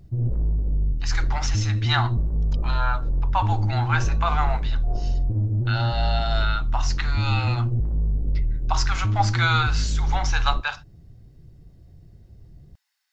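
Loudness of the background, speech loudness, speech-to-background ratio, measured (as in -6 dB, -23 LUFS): -25.5 LUFS, -27.5 LUFS, -2.0 dB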